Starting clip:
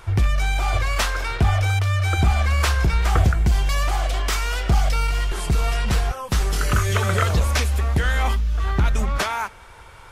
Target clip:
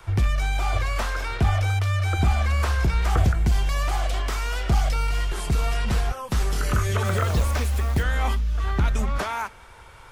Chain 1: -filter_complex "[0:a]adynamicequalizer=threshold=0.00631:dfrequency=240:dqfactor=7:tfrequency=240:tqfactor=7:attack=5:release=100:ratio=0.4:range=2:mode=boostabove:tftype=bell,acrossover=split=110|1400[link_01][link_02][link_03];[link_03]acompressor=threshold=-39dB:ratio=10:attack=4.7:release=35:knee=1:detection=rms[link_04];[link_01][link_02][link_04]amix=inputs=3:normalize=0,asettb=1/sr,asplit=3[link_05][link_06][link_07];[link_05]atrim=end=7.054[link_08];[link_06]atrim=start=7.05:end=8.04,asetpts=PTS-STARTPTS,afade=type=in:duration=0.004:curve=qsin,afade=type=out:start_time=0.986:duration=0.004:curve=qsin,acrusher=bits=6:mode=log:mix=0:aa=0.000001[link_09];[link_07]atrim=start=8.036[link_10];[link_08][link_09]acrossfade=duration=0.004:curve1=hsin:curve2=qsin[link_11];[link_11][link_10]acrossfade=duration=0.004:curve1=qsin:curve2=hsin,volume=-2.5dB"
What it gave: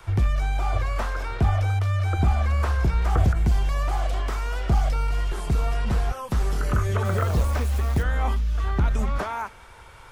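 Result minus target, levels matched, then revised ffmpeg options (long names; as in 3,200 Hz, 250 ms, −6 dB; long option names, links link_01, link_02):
downward compressor: peak gain reduction +7.5 dB
-filter_complex "[0:a]adynamicequalizer=threshold=0.00631:dfrequency=240:dqfactor=7:tfrequency=240:tqfactor=7:attack=5:release=100:ratio=0.4:range=2:mode=boostabove:tftype=bell,acrossover=split=110|1400[link_01][link_02][link_03];[link_03]acompressor=threshold=-30.5dB:ratio=10:attack=4.7:release=35:knee=1:detection=rms[link_04];[link_01][link_02][link_04]amix=inputs=3:normalize=0,asettb=1/sr,asplit=3[link_05][link_06][link_07];[link_05]atrim=end=7.054[link_08];[link_06]atrim=start=7.05:end=8.04,asetpts=PTS-STARTPTS,afade=type=in:duration=0.004:curve=qsin,afade=type=out:start_time=0.986:duration=0.004:curve=qsin,acrusher=bits=6:mode=log:mix=0:aa=0.000001[link_09];[link_07]atrim=start=8.036[link_10];[link_08][link_09]acrossfade=duration=0.004:curve1=hsin:curve2=qsin[link_11];[link_11][link_10]acrossfade=duration=0.004:curve1=qsin:curve2=hsin,volume=-2.5dB"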